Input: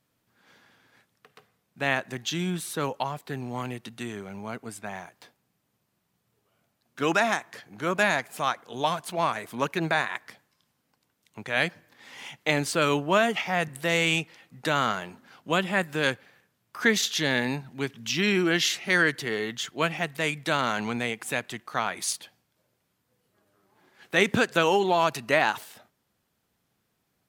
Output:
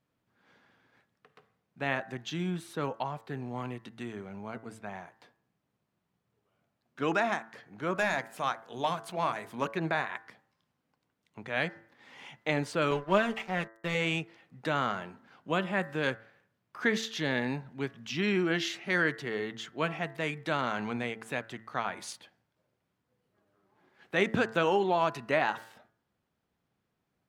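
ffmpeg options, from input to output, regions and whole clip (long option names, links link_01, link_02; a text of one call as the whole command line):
ffmpeg -i in.wav -filter_complex "[0:a]asettb=1/sr,asplit=3[link_01][link_02][link_03];[link_01]atrim=end=7.954[link_04];[link_02]atrim=start=7.95:end=9.68,asetpts=PTS-STARTPTS,afade=type=in:duration=0.004:curve=qsin,afade=type=out:start_time=1.726:duration=0.004:curve=qsin,highshelf=frequency=4900:gain=7.5,bandreject=frequency=50:width_type=h:width=6,bandreject=frequency=100:width_type=h:width=6,bandreject=frequency=150:width_type=h:width=6,bandreject=frequency=200:width_type=h:width=6,bandreject=frequency=250:width_type=h:width=6,bandreject=frequency=300:width_type=h:width=6,bandreject=frequency=350:width_type=h:width=6,bandreject=frequency=400:width_type=h:width=6,bandreject=frequency=450:width_type=h:width=6,asoftclip=type=hard:threshold=-13.5dB[link_05];[link_03]atrim=start=9.676[link_06];[link_04][link_05]acrossfade=duration=0.004:curve1=hsin:curve2=qsin[link_07];[link_07][link_06]acrossfade=duration=0.004:curve1=qsin:curve2=hsin,asettb=1/sr,asplit=3[link_08][link_09][link_10];[link_08]atrim=end=12.914[link_11];[link_09]atrim=start=12.91:end=13.95,asetpts=PTS-STARTPTS,afade=type=in:duration=0.004:curve=qsin,afade=type=out:start_time=1.036:duration=0.004:curve=qsin,agate=range=-33dB:threshold=-34dB:ratio=3:release=100:detection=peak,aeval=exprs='sgn(val(0))*max(abs(val(0))-0.0158,0)':channel_layout=same,aecho=1:1:5.1:0.52,atrim=end_sample=45864[link_12];[link_10]atrim=start=13.946[link_13];[link_11][link_12]acrossfade=duration=0.004:curve1=hsin:curve2=qsin[link_14];[link_14][link_13]acrossfade=duration=0.004:curve1=qsin:curve2=hsin,lowpass=frequency=2100:poles=1,bandreject=frequency=111.9:width_type=h:width=4,bandreject=frequency=223.8:width_type=h:width=4,bandreject=frequency=335.7:width_type=h:width=4,bandreject=frequency=447.6:width_type=h:width=4,bandreject=frequency=559.5:width_type=h:width=4,bandreject=frequency=671.4:width_type=h:width=4,bandreject=frequency=783.3:width_type=h:width=4,bandreject=frequency=895.2:width_type=h:width=4,bandreject=frequency=1007.1:width_type=h:width=4,bandreject=frequency=1119:width_type=h:width=4,bandreject=frequency=1230.9:width_type=h:width=4,bandreject=frequency=1342.8:width_type=h:width=4,bandreject=frequency=1454.7:width_type=h:width=4,bandreject=frequency=1566.6:width_type=h:width=4,bandreject=frequency=1678.5:width_type=h:width=4,bandreject=frequency=1790.4:width_type=h:width=4,bandreject=frequency=1902.3:width_type=h:width=4,bandreject=frequency=2014.2:width_type=h:width=4,volume=-3.5dB" out.wav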